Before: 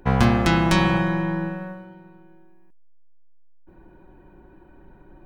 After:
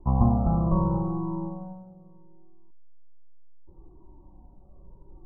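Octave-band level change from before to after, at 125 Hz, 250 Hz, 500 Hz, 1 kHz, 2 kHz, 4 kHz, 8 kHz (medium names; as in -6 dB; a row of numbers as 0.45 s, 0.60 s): -2.5 dB, -5.0 dB, -7.5 dB, -7.5 dB, under -40 dB, under -40 dB, under -40 dB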